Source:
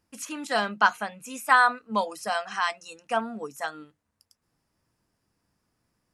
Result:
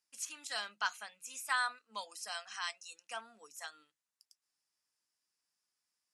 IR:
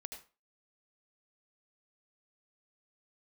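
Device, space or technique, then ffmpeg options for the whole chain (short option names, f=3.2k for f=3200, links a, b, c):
piezo pickup straight into a mixer: -af "lowpass=7.5k,aderivative"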